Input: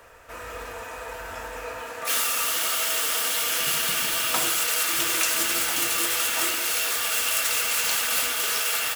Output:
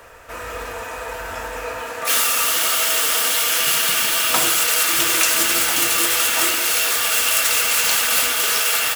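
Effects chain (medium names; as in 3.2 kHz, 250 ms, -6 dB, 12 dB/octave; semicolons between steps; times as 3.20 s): 3.36–4.30 s: bass shelf 240 Hz -7 dB; trim +6.5 dB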